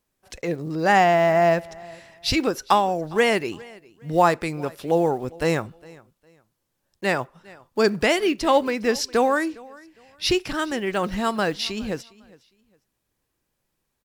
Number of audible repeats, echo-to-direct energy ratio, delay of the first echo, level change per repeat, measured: 2, −22.5 dB, 408 ms, −11.5 dB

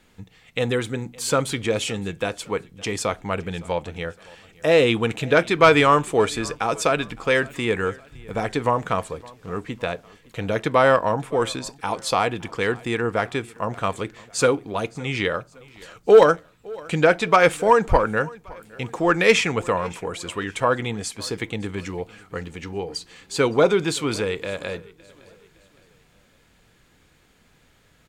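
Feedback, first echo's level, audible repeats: 42%, −23.0 dB, 2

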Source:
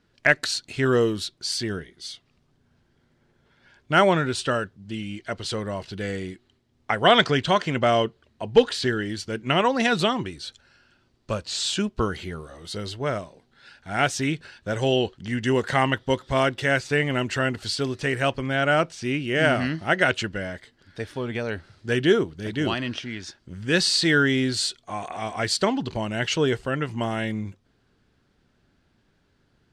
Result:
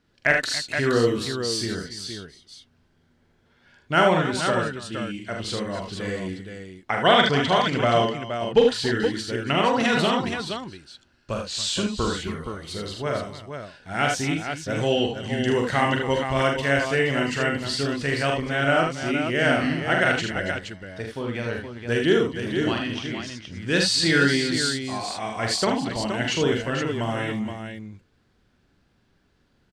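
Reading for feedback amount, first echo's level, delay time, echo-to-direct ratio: repeats not evenly spaced, −4.5 dB, 43 ms, −0.5 dB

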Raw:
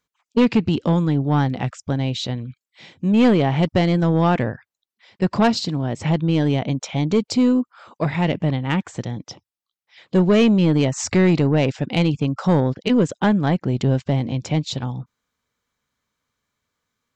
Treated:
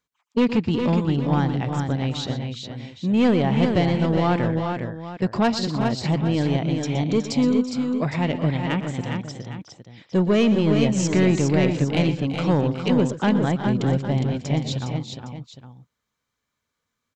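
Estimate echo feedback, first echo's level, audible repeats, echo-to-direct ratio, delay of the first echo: repeats not evenly spaced, −14.0 dB, 4, −3.5 dB, 119 ms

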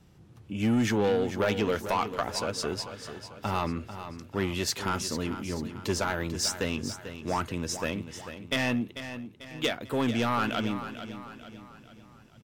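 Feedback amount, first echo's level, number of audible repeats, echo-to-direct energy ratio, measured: 46%, −11.0 dB, 4, −10.0 dB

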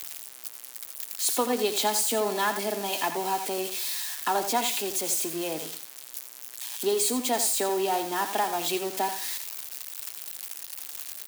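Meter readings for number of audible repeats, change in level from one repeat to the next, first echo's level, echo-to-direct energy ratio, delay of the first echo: 2, −13.5 dB, −10.0 dB, −10.0 dB, 85 ms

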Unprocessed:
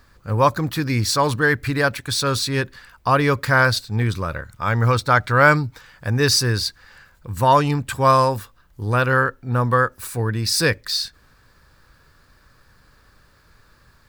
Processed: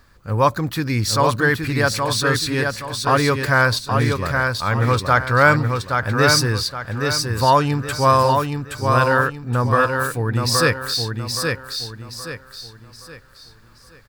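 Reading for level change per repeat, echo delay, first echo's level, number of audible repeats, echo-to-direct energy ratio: −9.0 dB, 822 ms, −4.5 dB, 4, −4.0 dB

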